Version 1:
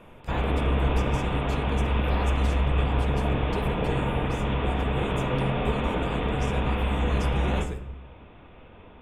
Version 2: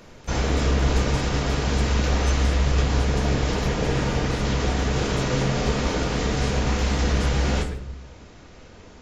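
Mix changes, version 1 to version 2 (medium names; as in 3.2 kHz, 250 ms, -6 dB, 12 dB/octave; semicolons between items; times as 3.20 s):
background: remove rippled Chebyshev low-pass 3.6 kHz, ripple 6 dB; master: add bass shelf 440 Hz -3 dB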